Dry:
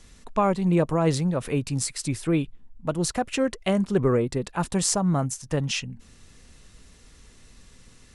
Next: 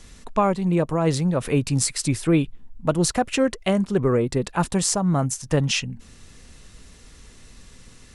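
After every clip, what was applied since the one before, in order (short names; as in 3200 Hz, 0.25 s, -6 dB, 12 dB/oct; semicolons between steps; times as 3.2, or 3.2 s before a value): vocal rider within 4 dB 0.5 s; gain +3 dB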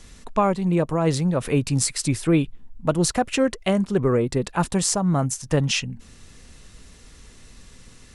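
nothing audible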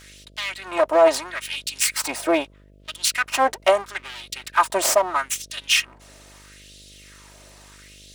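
minimum comb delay 3.2 ms; LFO high-pass sine 0.77 Hz 580–3600 Hz; buzz 50 Hz, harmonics 13, -55 dBFS -5 dB/oct; gain +3.5 dB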